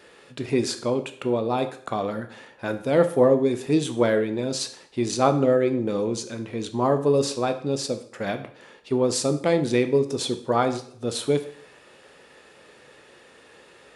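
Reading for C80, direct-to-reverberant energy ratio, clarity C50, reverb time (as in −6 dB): 15.5 dB, 7.5 dB, 12.0 dB, 0.55 s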